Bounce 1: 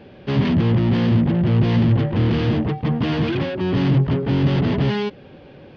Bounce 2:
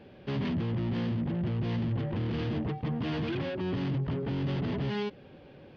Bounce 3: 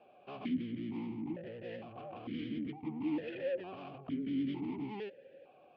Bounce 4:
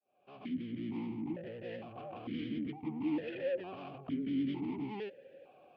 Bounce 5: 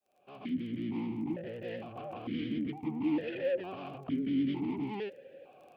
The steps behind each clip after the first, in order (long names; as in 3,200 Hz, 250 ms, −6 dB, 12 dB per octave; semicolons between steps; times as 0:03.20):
brickwall limiter −16.5 dBFS, peak gain reduction 8 dB; level −8.5 dB
pitch vibrato 9.8 Hz 78 cents; formant filter that steps through the vowels 2.2 Hz; level +4 dB
fade in at the beginning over 0.87 s; level +1 dB
surface crackle 17 per second −54 dBFS; level +3.5 dB